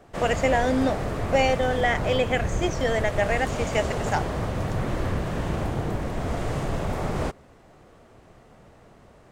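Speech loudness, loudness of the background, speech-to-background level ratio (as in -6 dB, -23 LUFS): -25.5 LUFS, -29.0 LUFS, 3.5 dB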